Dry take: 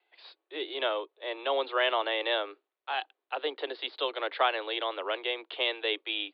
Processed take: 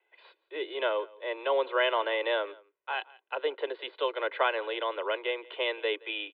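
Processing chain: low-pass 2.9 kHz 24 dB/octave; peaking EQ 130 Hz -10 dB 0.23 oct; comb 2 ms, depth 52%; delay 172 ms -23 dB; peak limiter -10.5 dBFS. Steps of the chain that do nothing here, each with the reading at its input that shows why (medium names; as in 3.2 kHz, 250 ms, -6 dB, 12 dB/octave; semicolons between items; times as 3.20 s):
peaking EQ 130 Hz: input has nothing below 250 Hz; peak limiter -10.5 dBFS: peak at its input -13.5 dBFS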